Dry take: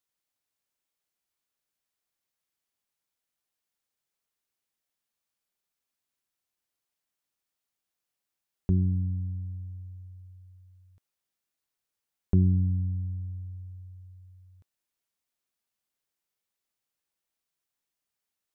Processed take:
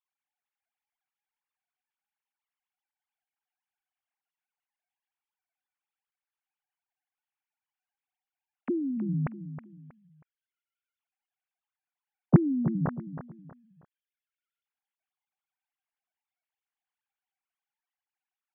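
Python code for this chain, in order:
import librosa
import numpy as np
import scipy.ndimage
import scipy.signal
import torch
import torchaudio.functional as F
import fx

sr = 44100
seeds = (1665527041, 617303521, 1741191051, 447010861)

y = fx.sine_speech(x, sr)
y = fx.air_absorb(y, sr, metres=170.0)
y = fx.echo_feedback(y, sr, ms=319, feedback_pct=32, wet_db=-11.5)
y = y * 10.0 ** (-1.5 / 20.0)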